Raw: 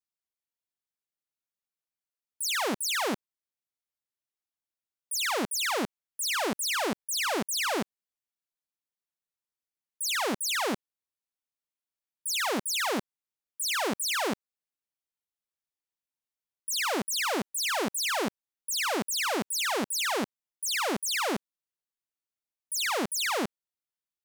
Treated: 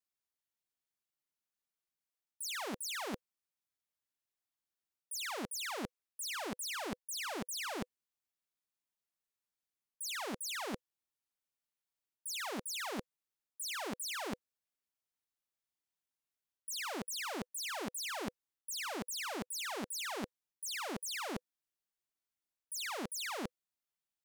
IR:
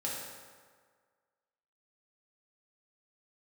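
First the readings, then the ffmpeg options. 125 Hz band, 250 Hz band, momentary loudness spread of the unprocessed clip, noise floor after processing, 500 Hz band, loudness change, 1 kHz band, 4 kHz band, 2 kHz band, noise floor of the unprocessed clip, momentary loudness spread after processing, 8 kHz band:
-7.5 dB, -10.0 dB, 6 LU, under -85 dBFS, -12.0 dB, -11.0 dB, -11.5 dB, -11.0 dB, -11.5 dB, under -85 dBFS, 6 LU, -10.5 dB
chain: -af "bandreject=f=500:w=12,areverse,acompressor=threshold=0.0126:ratio=6,areverse,volume=0.891"

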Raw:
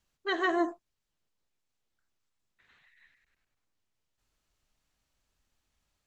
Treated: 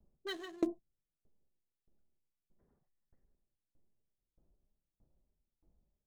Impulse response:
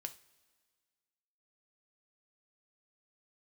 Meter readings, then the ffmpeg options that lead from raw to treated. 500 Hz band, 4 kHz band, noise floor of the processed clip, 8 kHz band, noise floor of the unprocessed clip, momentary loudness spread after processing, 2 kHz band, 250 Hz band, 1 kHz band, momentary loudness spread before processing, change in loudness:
-9.5 dB, -7.0 dB, under -85 dBFS, no reading, -83 dBFS, 10 LU, -17.0 dB, -6.0 dB, -19.5 dB, 6 LU, -9.5 dB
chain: -filter_complex "[0:a]acrossover=split=220|3000[s0][s1][s2];[s1]acompressor=threshold=0.00501:ratio=3[s3];[s0][s3][s2]amix=inputs=3:normalize=0,flanger=delay=4.9:depth=1:regen=-46:speed=1.5:shape=sinusoidal,acrossover=split=640[s4][s5];[s5]aeval=exprs='sgn(val(0))*max(abs(val(0))-0.00188,0)':c=same[s6];[s4][s6]amix=inputs=2:normalize=0,aeval=exprs='val(0)*pow(10,-28*if(lt(mod(1.6*n/s,1),2*abs(1.6)/1000),1-mod(1.6*n/s,1)/(2*abs(1.6)/1000),(mod(1.6*n/s,1)-2*abs(1.6)/1000)/(1-2*abs(1.6)/1000))/20)':c=same,volume=7.08"

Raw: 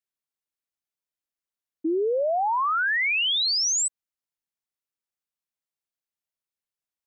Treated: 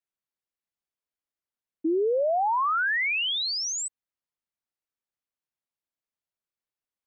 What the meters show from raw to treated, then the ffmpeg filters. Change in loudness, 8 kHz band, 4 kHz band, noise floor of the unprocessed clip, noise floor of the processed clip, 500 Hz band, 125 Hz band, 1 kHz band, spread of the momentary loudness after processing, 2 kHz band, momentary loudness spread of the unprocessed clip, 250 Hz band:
-2.5 dB, -6.5 dB, -4.5 dB, under -85 dBFS, under -85 dBFS, 0.0 dB, no reading, -0.5 dB, 7 LU, -2.0 dB, 7 LU, 0.0 dB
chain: -af "highshelf=f=3600:g=-8.5"

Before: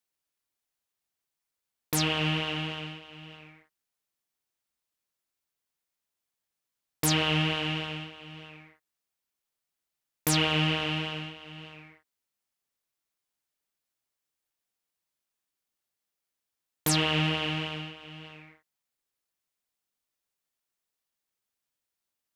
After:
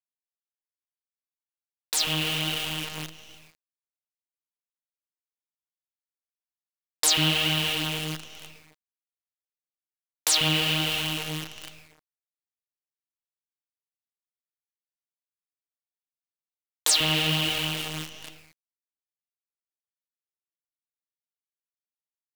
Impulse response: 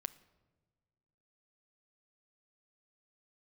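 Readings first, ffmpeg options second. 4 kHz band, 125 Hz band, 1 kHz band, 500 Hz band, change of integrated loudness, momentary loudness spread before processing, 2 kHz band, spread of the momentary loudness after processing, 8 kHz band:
+6.0 dB, -1.0 dB, -0.5 dB, -1.0 dB, +3.5 dB, 21 LU, +2.5 dB, 17 LU, +7.5 dB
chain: -filter_complex "[0:a]flanger=delay=1.3:depth=5.3:regen=55:speed=1.2:shape=sinusoidal,highshelf=f=7700:g=-3,agate=range=0.0224:threshold=0.00447:ratio=3:detection=peak,equalizer=f=500:t=o:w=1:g=3,equalizer=f=4000:t=o:w=1:g=10,equalizer=f=8000:t=o:w=1:g=11,dynaudnorm=f=680:g=7:m=3.16,acrossover=split=460[s0][s1];[s0]adelay=140[s2];[s2][s1]amix=inputs=2:normalize=0,acompressor=threshold=0.0398:ratio=1.5,acrusher=bits=6:dc=4:mix=0:aa=0.000001"

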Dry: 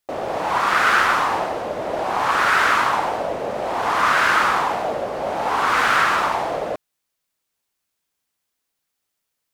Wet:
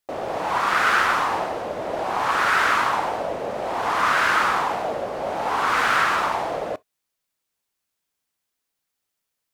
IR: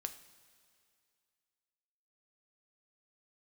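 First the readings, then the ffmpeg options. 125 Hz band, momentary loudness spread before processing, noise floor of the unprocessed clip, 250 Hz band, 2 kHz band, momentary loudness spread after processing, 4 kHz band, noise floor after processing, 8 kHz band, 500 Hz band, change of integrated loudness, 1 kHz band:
-2.5 dB, 10 LU, -78 dBFS, -2.5 dB, -2.5 dB, 10 LU, -2.5 dB, -81 dBFS, -2.5 dB, -2.5 dB, -2.5 dB, -2.5 dB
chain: -filter_complex "[0:a]asplit=2[s0][s1];[1:a]atrim=start_sample=2205,atrim=end_sample=4410,asetrate=61740,aresample=44100[s2];[s1][s2]afir=irnorm=-1:irlink=0,volume=0.501[s3];[s0][s3]amix=inputs=2:normalize=0,volume=0.596"

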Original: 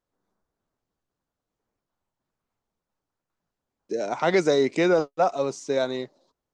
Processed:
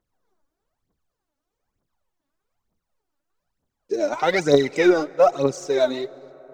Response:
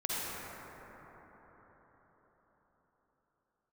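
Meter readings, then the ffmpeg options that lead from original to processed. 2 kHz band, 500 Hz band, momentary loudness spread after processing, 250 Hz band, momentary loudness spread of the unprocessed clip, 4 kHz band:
+3.5 dB, +4.0 dB, 11 LU, +4.0 dB, 12 LU, +3.5 dB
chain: -filter_complex "[0:a]aphaser=in_gain=1:out_gain=1:delay=3.7:decay=0.73:speed=1.1:type=triangular,asplit=2[s0][s1];[1:a]atrim=start_sample=2205,adelay=134[s2];[s1][s2]afir=irnorm=-1:irlink=0,volume=0.0335[s3];[s0][s3]amix=inputs=2:normalize=0"

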